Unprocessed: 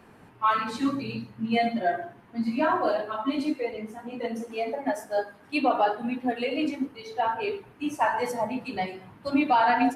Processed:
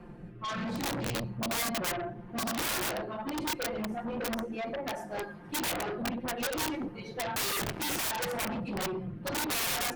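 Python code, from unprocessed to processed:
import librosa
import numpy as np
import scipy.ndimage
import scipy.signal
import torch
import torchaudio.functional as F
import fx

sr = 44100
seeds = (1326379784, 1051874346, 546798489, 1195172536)

y = fx.tilt_eq(x, sr, slope=-3.0)
y = y + 0.87 * np.pad(y, (int(5.7 * sr / 1000.0), 0))[:len(y)]
y = fx.dynamic_eq(y, sr, hz=110.0, q=4.1, threshold_db=-46.0, ratio=4.0, max_db=5)
y = fx.leveller(y, sr, passes=5, at=(7.36, 8.11))
y = fx.rotary(y, sr, hz=0.7)
y = (np.mod(10.0 ** (19.5 / 20.0) * y + 1.0, 2.0) - 1.0) / 10.0 ** (19.5 / 20.0)
y = fx.cheby_harmonics(y, sr, harmonics=(3, 5, 8), levels_db=(-12, -7, -22), full_scale_db=-19.5)
y = y * 10.0 ** (-7.0 / 20.0)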